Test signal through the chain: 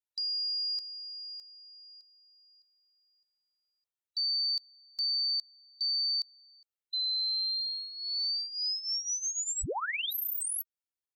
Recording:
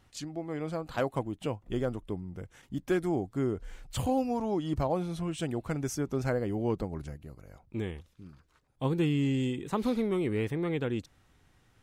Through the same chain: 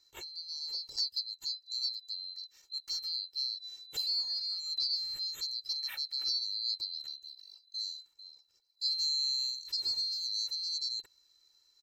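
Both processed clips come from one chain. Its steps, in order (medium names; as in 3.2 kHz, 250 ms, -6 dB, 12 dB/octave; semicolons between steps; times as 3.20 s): split-band scrambler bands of 4 kHz; comb 2.2 ms, depth 65%; trim -6.5 dB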